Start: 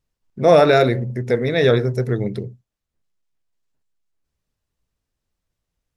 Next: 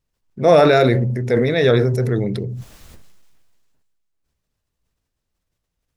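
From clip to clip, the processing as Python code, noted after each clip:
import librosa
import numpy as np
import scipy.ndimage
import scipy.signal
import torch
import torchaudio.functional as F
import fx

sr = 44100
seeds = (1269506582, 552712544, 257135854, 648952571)

y = fx.sustainer(x, sr, db_per_s=28.0)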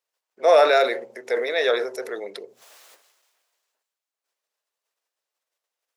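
y = scipy.signal.sosfilt(scipy.signal.butter(4, 500.0, 'highpass', fs=sr, output='sos'), x)
y = y * 10.0 ** (-1.5 / 20.0)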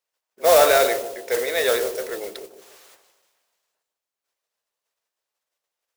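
y = fx.echo_bbd(x, sr, ms=150, stages=1024, feedback_pct=40, wet_db=-9.5)
y = fx.mod_noise(y, sr, seeds[0], snr_db=10)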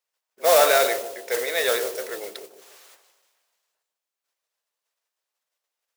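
y = fx.low_shelf(x, sr, hz=380.0, db=-8.5)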